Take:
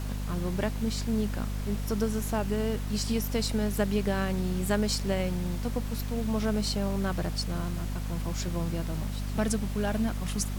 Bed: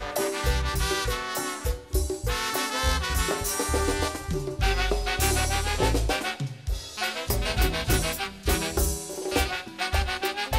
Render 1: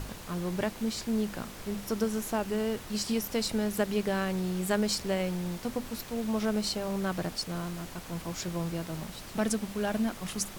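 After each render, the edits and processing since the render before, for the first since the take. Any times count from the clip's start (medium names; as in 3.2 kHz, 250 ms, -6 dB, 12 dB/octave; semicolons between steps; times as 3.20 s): hum notches 50/100/150/200/250 Hz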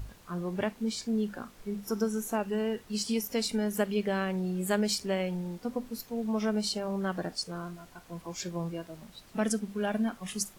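noise print and reduce 12 dB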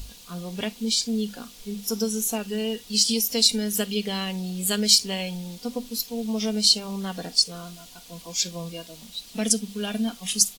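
resonant high shelf 2.4 kHz +12 dB, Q 1.5; comb 4.2 ms, depth 53%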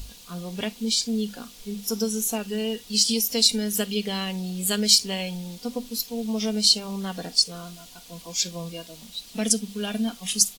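no audible change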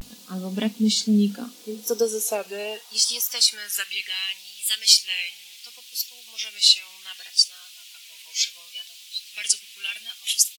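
high-pass sweep 210 Hz -> 2.5 kHz, 1.20–4.20 s; vibrato 0.7 Hz 96 cents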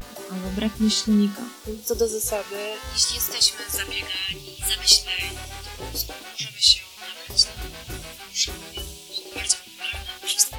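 add bed -11.5 dB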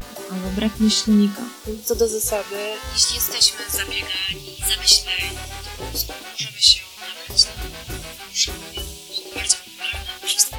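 trim +3.5 dB; peak limiter -1 dBFS, peak gain reduction 2.5 dB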